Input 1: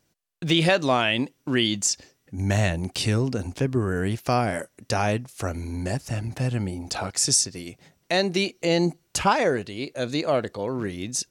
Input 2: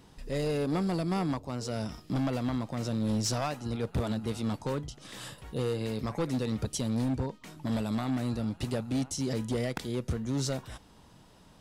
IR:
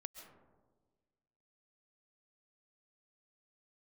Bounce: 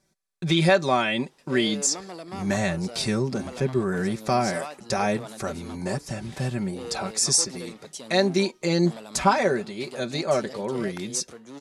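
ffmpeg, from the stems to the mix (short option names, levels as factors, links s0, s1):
-filter_complex "[0:a]bandreject=f=2900:w=5.3,aecho=1:1:5.2:0.73,volume=0.794[s0];[1:a]highpass=390,adelay=1200,volume=0.708[s1];[s0][s1]amix=inputs=2:normalize=0,lowpass=f=12000:w=0.5412,lowpass=f=12000:w=1.3066"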